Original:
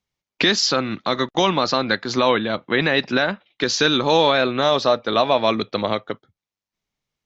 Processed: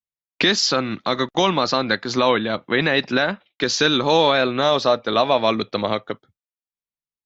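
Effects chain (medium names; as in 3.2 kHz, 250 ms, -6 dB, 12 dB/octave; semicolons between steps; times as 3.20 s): gate with hold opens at -46 dBFS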